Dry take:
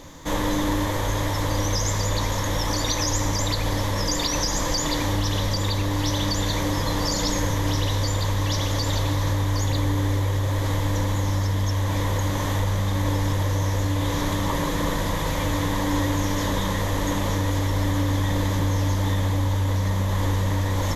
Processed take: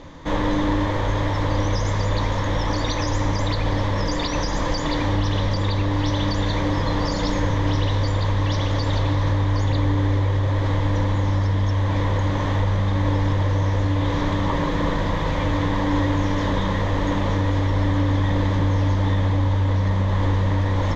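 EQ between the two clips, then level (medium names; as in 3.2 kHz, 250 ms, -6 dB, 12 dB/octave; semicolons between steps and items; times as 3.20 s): distance through air 200 m; +3.0 dB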